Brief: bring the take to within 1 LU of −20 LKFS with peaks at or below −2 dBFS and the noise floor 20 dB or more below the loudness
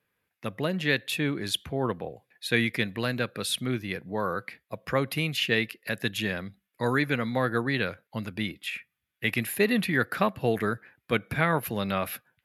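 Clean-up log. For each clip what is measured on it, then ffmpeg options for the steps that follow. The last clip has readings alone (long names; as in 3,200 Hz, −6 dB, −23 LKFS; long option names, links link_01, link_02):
integrated loudness −28.5 LKFS; sample peak −7.0 dBFS; target loudness −20.0 LKFS
→ -af "volume=8.5dB,alimiter=limit=-2dB:level=0:latency=1"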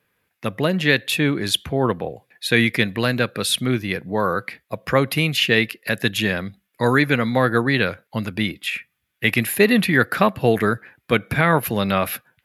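integrated loudness −20.0 LKFS; sample peak −2.0 dBFS; background noise floor −74 dBFS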